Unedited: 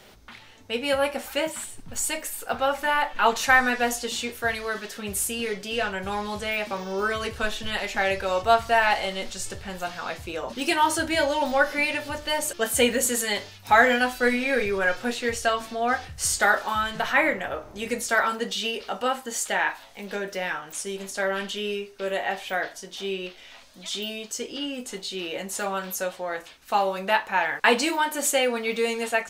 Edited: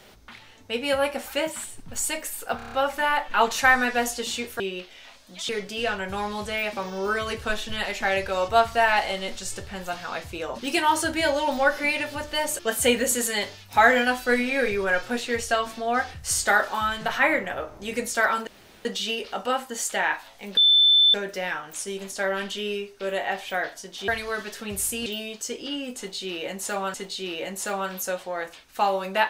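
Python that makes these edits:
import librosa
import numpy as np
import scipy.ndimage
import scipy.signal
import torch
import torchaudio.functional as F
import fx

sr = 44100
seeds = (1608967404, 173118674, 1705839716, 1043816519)

y = fx.edit(x, sr, fx.stutter(start_s=2.57, slice_s=0.03, count=6),
    fx.swap(start_s=4.45, length_s=0.98, other_s=23.07, other_length_s=0.89),
    fx.insert_room_tone(at_s=18.41, length_s=0.38),
    fx.insert_tone(at_s=20.13, length_s=0.57, hz=3530.0, db=-13.5),
    fx.repeat(start_s=24.87, length_s=0.97, count=2), tone=tone)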